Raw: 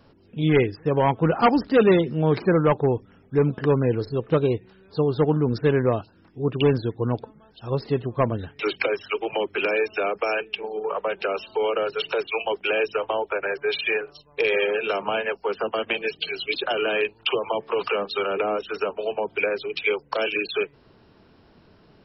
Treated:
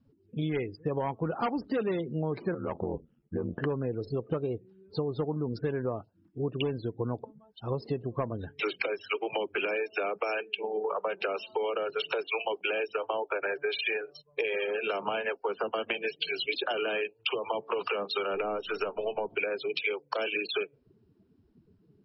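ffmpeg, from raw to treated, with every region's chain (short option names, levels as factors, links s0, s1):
-filter_complex "[0:a]asettb=1/sr,asplit=3[s0][s1][s2];[s0]atrim=end=2.544[s3];[s1]atrim=start=2.54:end=3.58,asetpts=PTS-STARTPTS,afade=t=in:d=0.004:c=qsin,afade=t=out:st=1.036:d=0.004:c=qsin,equalizer=f=2900:t=o:w=0.34:g=5,acompressor=threshold=0.0891:ratio=10:attack=3.2:release=140:knee=1:detection=peak,aeval=exprs='val(0)*sin(2*PI*43*n/s)':c=same[s4];[s2]atrim=start=3.576[s5];[s3][s4]acrossfade=d=0.004:c1=hsin:c2=qsin[s6];[s6][s5]acrossfade=d=0.004:c1=qsin:c2=hsin,asettb=1/sr,asplit=3[s7][s8][s9];[s7]atrim=end=18.344[s10];[s8]atrim=start=18.34:end=19.35,asetpts=PTS-STARTPTS,afade=t=in:d=0.004:c=qsin,afade=t=out:st=1.006:d=0.004:c=qsin,aeval=exprs='if(lt(val(0),0),0.708*val(0),val(0))':c=same,acompressor=mode=upward:threshold=0.0398:ratio=2.5:attack=3.2:release=140:knee=2.83:detection=peak[s11];[s9]atrim=start=19.346[s12];[s10][s11]acrossfade=d=0.004:c1=hsin:c2=qsin[s13];[s13][s12]acrossfade=d=0.004:c1=qsin:c2=hsin,acompressor=threshold=0.0447:ratio=10,afftdn=nr=25:nf=-43,lowshelf=f=120:g=-4"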